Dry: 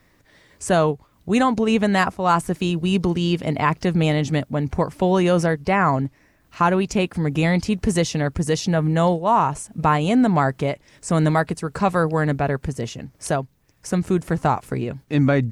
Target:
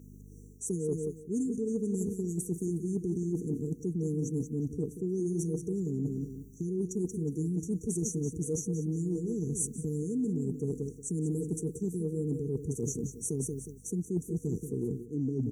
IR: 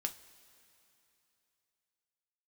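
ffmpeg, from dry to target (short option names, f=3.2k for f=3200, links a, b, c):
-filter_complex "[0:a]aeval=exprs='val(0)+0.00631*(sin(2*PI*50*n/s)+sin(2*PI*2*50*n/s)/2+sin(2*PI*3*50*n/s)/3+sin(2*PI*4*50*n/s)/4+sin(2*PI*5*50*n/s)/5)':c=same,highpass=f=190:p=1,asplit=2[a][b];[b]aecho=0:1:182|364|546|728:0.282|0.093|0.0307|0.0101[c];[a][c]amix=inputs=2:normalize=0,afftfilt=real='re*(1-between(b*sr/4096,480,5700))':imag='im*(1-between(b*sr/4096,480,5700))':win_size=4096:overlap=0.75,equalizer=f=4.1k:w=2.6:g=-4.5,areverse,acompressor=threshold=-33dB:ratio=6,areverse,adynamicequalizer=threshold=0.002:dfrequency=6100:dqfactor=0.7:tfrequency=6100:tqfactor=0.7:attack=5:release=100:ratio=0.375:range=2:mode=boostabove:tftype=highshelf,volume=3dB"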